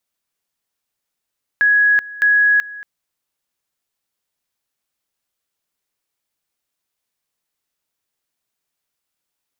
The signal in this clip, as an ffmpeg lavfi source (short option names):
-f lavfi -i "aevalsrc='pow(10,(-10-19.5*gte(mod(t,0.61),0.38))/20)*sin(2*PI*1670*t)':d=1.22:s=44100"